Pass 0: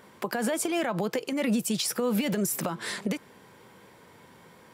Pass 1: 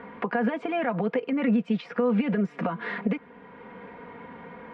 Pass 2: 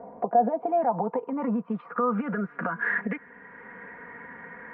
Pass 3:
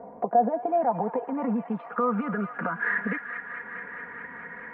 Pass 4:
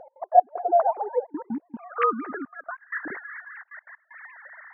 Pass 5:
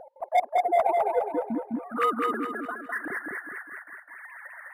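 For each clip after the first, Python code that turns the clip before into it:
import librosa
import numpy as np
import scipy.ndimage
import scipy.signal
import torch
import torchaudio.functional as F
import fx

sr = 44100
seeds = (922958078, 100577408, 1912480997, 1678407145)

y1 = scipy.signal.sosfilt(scipy.signal.butter(4, 2400.0, 'lowpass', fs=sr, output='sos'), x)
y1 = y1 + 0.72 * np.pad(y1, (int(4.2 * sr / 1000.0), 0))[:len(y1)]
y1 = fx.band_squash(y1, sr, depth_pct=40)
y2 = fx.filter_sweep_lowpass(y1, sr, from_hz=690.0, to_hz=1800.0, start_s=0.32, end_s=3.11, q=7.0)
y2 = y2 * librosa.db_to_amplitude(-5.0)
y3 = fx.echo_wet_highpass(y2, sr, ms=213, feedback_pct=82, hz=1500.0, wet_db=-6.5)
y4 = fx.sine_speech(y3, sr)
y4 = fx.step_gate(y4, sr, bpm=190, pattern='x.x.x..xxxxxxxx', floor_db=-24.0, edge_ms=4.5)
y4 = y4 * librosa.db_to_amplitude(2.0)
y5 = 10.0 ** (-16.0 / 20.0) * np.tanh(y4 / 10.0 ** (-16.0 / 20.0))
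y5 = fx.echo_feedback(y5, sr, ms=206, feedback_pct=42, wet_db=-3.0)
y5 = np.interp(np.arange(len(y5)), np.arange(len(y5))[::4], y5[::4])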